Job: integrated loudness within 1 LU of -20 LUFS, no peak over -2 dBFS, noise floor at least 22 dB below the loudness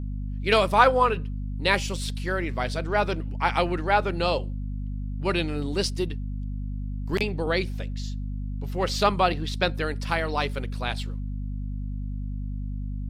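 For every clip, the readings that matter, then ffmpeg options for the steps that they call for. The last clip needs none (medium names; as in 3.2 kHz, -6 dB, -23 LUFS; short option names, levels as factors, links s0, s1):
hum 50 Hz; highest harmonic 250 Hz; hum level -28 dBFS; loudness -26.5 LUFS; peak level -4.0 dBFS; loudness target -20.0 LUFS
-> -af "bandreject=f=50:t=h:w=6,bandreject=f=100:t=h:w=6,bandreject=f=150:t=h:w=6,bandreject=f=200:t=h:w=6,bandreject=f=250:t=h:w=6"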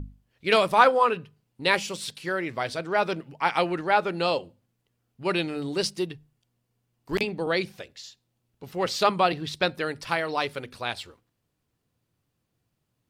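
hum not found; loudness -26.0 LUFS; peak level -3.5 dBFS; loudness target -20.0 LUFS
-> -af "volume=2,alimiter=limit=0.794:level=0:latency=1"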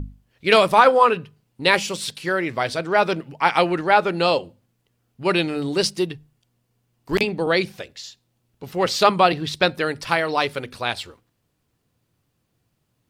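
loudness -20.5 LUFS; peak level -2.0 dBFS; noise floor -72 dBFS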